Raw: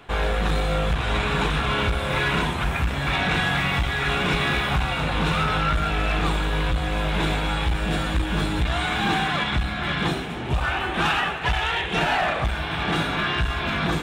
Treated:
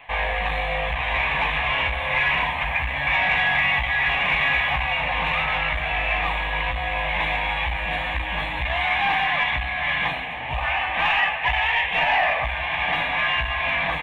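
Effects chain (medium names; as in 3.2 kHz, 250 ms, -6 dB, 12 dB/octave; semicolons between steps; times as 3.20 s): tracing distortion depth 0.023 ms; peaking EQ 210 Hz -10 dB 0.25 oct; static phaser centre 1.4 kHz, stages 6; doubling 15 ms -11 dB; overdrive pedal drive 10 dB, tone 2.4 kHz, clips at -11 dBFS; graphic EQ 125/2000/8000 Hz -5/+7/-11 dB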